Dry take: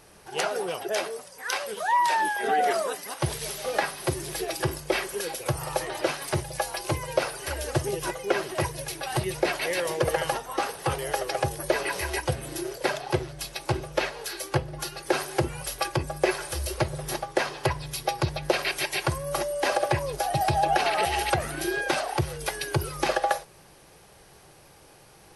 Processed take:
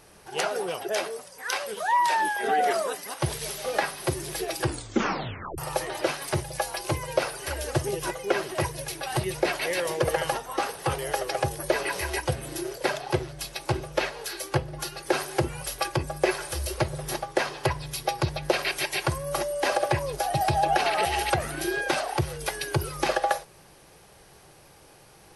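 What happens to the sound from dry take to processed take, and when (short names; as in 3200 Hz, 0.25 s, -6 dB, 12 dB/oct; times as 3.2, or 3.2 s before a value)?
4.62 tape stop 0.96 s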